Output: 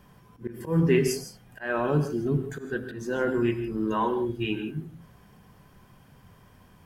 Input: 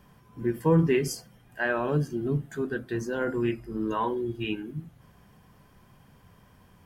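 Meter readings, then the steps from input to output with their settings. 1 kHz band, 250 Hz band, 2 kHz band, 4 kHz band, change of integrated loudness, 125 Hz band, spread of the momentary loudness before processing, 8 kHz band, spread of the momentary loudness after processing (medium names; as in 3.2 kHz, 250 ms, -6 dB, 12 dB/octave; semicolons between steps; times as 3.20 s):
+1.0 dB, +1.0 dB, -1.0 dB, +1.5 dB, +1.0 dB, +0.5 dB, 11 LU, +2.0 dB, 15 LU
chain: slow attack 171 ms; gated-style reverb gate 180 ms rising, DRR 9 dB; trim +1.5 dB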